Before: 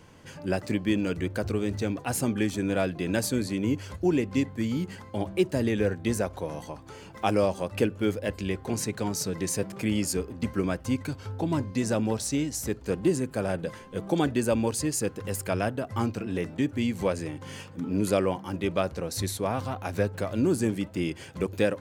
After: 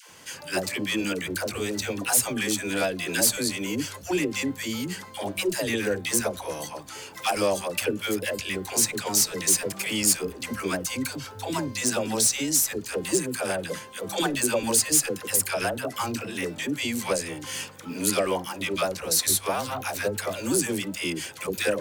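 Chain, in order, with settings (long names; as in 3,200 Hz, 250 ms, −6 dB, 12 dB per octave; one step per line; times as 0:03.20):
spectral tilt +3.5 dB per octave
soft clipping −19 dBFS, distortion −13 dB
all-pass dispersion lows, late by 101 ms, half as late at 540 Hz
level +4.5 dB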